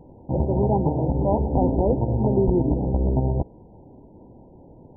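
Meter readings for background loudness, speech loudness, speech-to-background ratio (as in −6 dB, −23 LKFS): −24.5 LKFS, −26.0 LKFS, −1.5 dB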